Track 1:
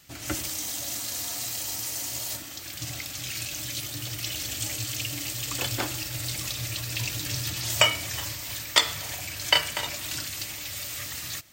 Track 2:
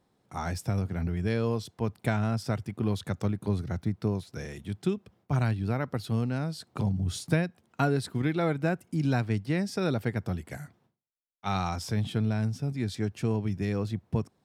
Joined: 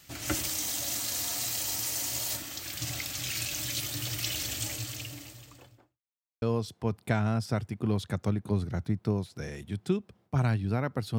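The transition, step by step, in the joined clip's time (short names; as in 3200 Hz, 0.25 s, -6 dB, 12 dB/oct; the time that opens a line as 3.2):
track 1
4.24–6.01 studio fade out
6.01–6.42 mute
6.42 switch to track 2 from 1.39 s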